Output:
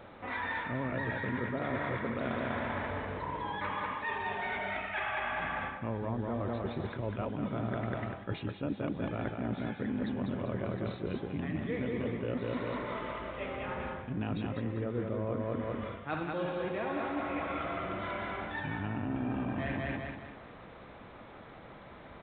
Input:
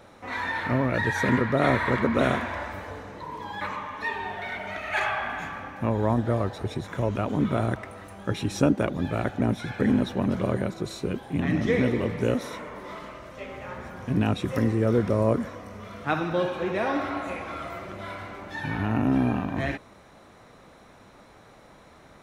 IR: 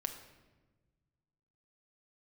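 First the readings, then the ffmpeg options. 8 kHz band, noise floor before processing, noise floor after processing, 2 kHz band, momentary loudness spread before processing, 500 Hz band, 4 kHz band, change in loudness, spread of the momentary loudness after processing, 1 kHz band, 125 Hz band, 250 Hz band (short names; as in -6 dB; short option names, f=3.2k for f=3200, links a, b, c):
under -30 dB, -52 dBFS, -50 dBFS, -6.5 dB, 14 LU, -8.5 dB, -8.0 dB, -8.5 dB, 5 LU, -6.0 dB, -9.0 dB, -9.0 dB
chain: -af "aecho=1:1:196|392|588|784|980:0.631|0.24|0.0911|0.0346|0.0132,aresample=8000,aresample=44100,areverse,acompressor=threshold=-32dB:ratio=6,areverse"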